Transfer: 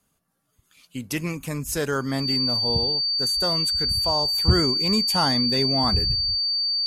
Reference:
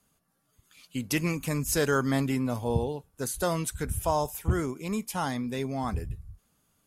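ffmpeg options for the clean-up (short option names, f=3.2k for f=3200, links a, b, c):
-af "bandreject=f=4.6k:w=30,asetnsamples=n=441:p=0,asendcmd='4.38 volume volume -7dB',volume=0dB"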